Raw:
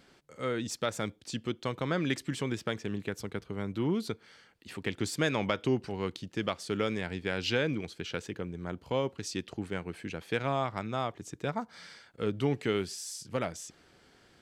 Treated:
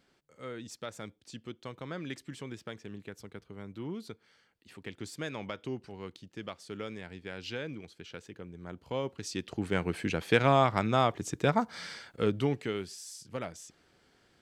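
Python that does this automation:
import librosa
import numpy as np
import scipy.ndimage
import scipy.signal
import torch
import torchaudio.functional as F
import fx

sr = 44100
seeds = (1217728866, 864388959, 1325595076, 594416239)

y = fx.gain(x, sr, db=fx.line((8.28, -9.0), (9.44, 0.0), (9.82, 7.0), (12.06, 7.0), (12.74, -5.0)))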